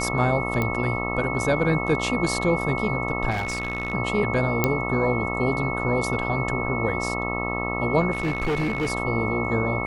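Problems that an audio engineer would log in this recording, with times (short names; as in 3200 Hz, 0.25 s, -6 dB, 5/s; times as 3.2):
buzz 60 Hz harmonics 22 -29 dBFS
tone 2200 Hz -29 dBFS
0.62 pop -12 dBFS
3.3–3.94 clipped -22 dBFS
4.64 pop -5 dBFS
8.11–8.92 clipped -20.5 dBFS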